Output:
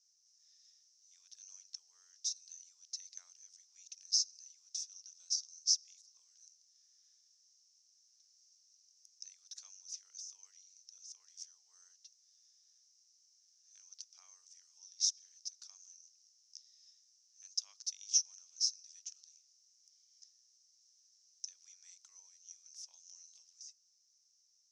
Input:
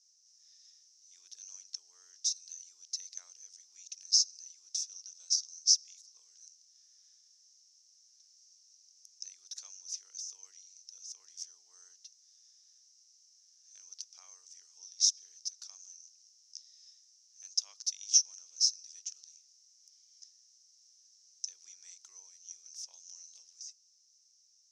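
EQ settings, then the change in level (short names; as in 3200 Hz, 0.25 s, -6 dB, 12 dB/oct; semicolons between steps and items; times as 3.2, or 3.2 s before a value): HPF 710 Hz 12 dB/oct; Bessel low-pass 10000 Hz; -5.0 dB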